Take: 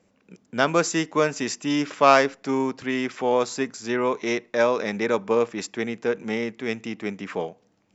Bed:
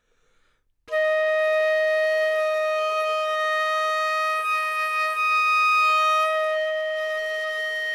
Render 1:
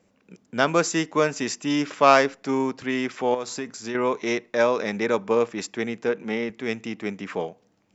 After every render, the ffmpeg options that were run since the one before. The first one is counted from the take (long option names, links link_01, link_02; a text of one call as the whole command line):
ffmpeg -i in.wav -filter_complex "[0:a]asettb=1/sr,asplit=3[link_01][link_02][link_03];[link_01]atrim=end=3.344[link_04];[link_02]atrim=start=3.34:end=3.95,asetpts=PTS-STARTPTS,afade=type=in:duration=0.004:curve=qsin,afade=type=out:start_time=0.606:duration=0.004:curve=qsin,acompressor=threshold=-26dB:ratio=4:attack=3.2:release=140:knee=1:detection=peak[link_05];[link_03]atrim=start=3.946[link_06];[link_04][link_05]acrossfade=duration=0.004:curve1=hsin:curve2=qsin[link_07];[link_07][link_06]acrossfade=duration=0.004:curve1=qsin:curve2=hsin,asettb=1/sr,asplit=3[link_08][link_09][link_10];[link_08]atrim=end=6.094[link_11];[link_09]atrim=start=6.09:end=6.5,asetpts=PTS-STARTPTS,afade=type=in:duration=0.004:curve=qsin,afade=type=out:start_time=0.406:duration=0.004:curve=qsin,highpass=130,lowpass=5000[link_12];[link_10]atrim=start=6.496[link_13];[link_11][link_12]acrossfade=duration=0.004:curve1=hsin:curve2=qsin[link_14];[link_14][link_13]acrossfade=duration=0.004:curve1=qsin:curve2=hsin" out.wav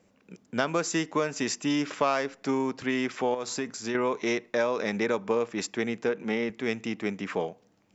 ffmpeg -i in.wav -af "acompressor=threshold=-23dB:ratio=4" out.wav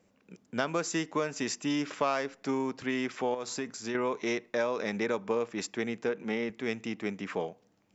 ffmpeg -i in.wav -af "volume=-3.5dB" out.wav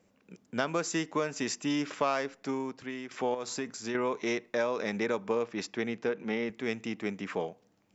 ffmpeg -i in.wav -filter_complex "[0:a]asettb=1/sr,asplit=3[link_01][link_02][link_03];[link_01]atrim=end=5.434[link_04];[link_02]atrim=start=5.43:end=6.46,asetpts=PTS-STARTPTS,afade=type=in:duration=0.004:curve=qsin,afade=type=out:start_time=1.026:duration=0.004:curve=qsin,lowpass=frequency=6300:width=0.5412,lowpass=frequency=6300:width=1.3066[link_05];[link_03]atrim=start=6.456[link_06];[link_04][link_05]acrossfade=duration=0.004:curve1=hsin:curve2=qsin[link_07];[link_07][link_06]acrossfade=duration=0.004:curve1=qsin:curve2=hsin,asplit=2[link_08][link_09];[link_08]atrim=end=3.11,asetpts=PTS-STARTPTS,afade=type=out:start_time=2.22:duration=0.89:silence=0.281838[link_10];[link_09]atrim=start=3.11,asetpts=PTS-STARTPTS,afade=type=in:duration=0.004:curve=hsin:silence=0.281838[link_11];[link_10][link_11]concat=n=2:v=0:a=1" out.wav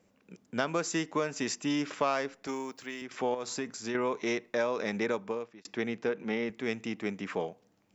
ffmpeg -i in.wav -filter_complex "[0:a]asettb=1/sr,asplit=3[link_01][link_02][link_03];[link_01]atrim=end=2.474[link_04];[link_02]atrim=start=2.47:end=3.02,asetpts=PTS-STARTPTS,afade=type=in:duration=0.004:curve=qsin,afade=type=out:start_time=0.546:duration=0.004:curve=qsin,aemphasis=mode=production:type=bsi[link_05];[link_03]atrim=start=3.016[link_06];[link_04][link_05]acrossfade=duration=0.004:curve1=hsin:curve2=qsin[link_07];[link_07][link_06]acrossfade=duration=0.004:curve1=qsin:curve2=hsin,asplit=2[link_08][link_09];[link_08]atrim=end=5.65,asetpts=PTS-STARTPTS,afade=type=out:start_time=5.1:duration=0.55[link_10];[link_09]atrim=start=5.65,asetpts=PTS-STARTPTS,afade=type=in:duration=0.004:curve=hsin[link_11];[link_10][link_11]concat=n=2:v=0:a=1" out.wav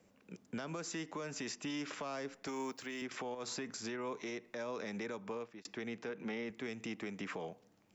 ffmpeg -i in.wav -filter_complex "[0:a]acrossover=split=310|660|5300[link_01][link_02][link_03][link_04];[link_01]acompressor=threshold=-40dB:ratio=4[link_05];[link_02]acompressor=threshold=-42dB:ratio=4[link_06];[link_03]acompressor=threshold=-39dB:ratio=4[link_07];[link_04]acompressor=threshold=-49dB:ratio=4[link_08];[link_05][link_06][link_07][link_08]amix=inputs=4:normalize=0,alimiter=level_in=8.5dB:limit=-24dB:level=0:latency=1:release=136,volume=-8.5dB" out.wav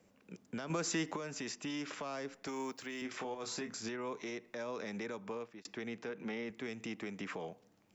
ffmpeg -i in.wav -filter_complex "[0:a]asettb=1/sr,asplit=3[link_01][link_02][link_03];[link_01]atrim=end=3.024[link_04];[link_02]atrim=start=3.02:end=3.89,asetpts=PTS-STARTPTS,afade=type=in:duration=0.004:curve=qsin,afade=type=out:start_time=0.866:duration=0.004:curve=qsin,asplit=2[link_05][link_06];[link_06]adelay=27,volume=-7.5dB[link_07];[link_05][link_07]amix=inputs=2:normalize=0,atrim=end_sample=38367[link_08];[link_03]atrim=start=3.886[link_09];[link_04][link_08]acrossfade=duration=0.004:curve1=hsin:curve2=qsin[link_10];[link_10][link_09]acrossfade=duration=0.004:curve1=qsin:curve2=hsin,asplit=3[link_11][link_12][link_13];[link_11]atrim=end=0.702[link_14];[link_12]atrim=start=0.698:end=1.162,asetpts=PTS-STARTPTS,volume=6.5dB[link_15];[link_13]atrim=start=1.158[link_16];[link_14][link_15]acrossfade=duration=0.004:curve1=hsin:curve2=hsin[link_17];[link_17][link_16]acrossfade=duration=0.004:curve1=hsin:curve2=hsin" out.wav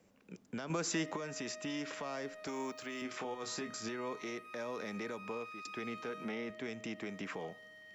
ffmpeg -i in.wav -i bed.wav -filter_complex "[1:a]volume=-29dB[link_01];[0:a][link_01]amix=inputs=2:normalize=0" out.wav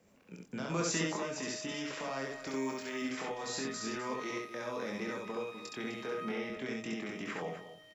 ffmpeg -i in.wav -filter_complex "[0:a]asplit=2[link_01][link_02];[link_02]adelay=23,volume=-5dB[link_03];[link_01][link_03]amix=inputs=2:normalize=0,aecho=1:1:67.06|253.6:0.794|0.282" out.wav